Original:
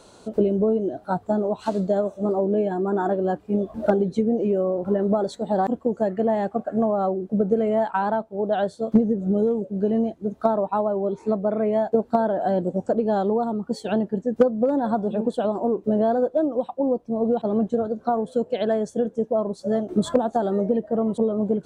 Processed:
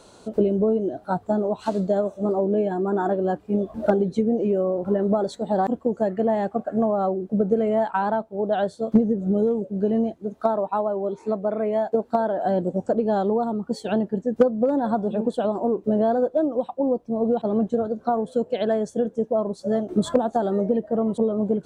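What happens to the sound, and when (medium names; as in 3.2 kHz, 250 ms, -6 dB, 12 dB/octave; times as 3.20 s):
10.17–12.45 s: bass shelf 220 Hz -7.5 dB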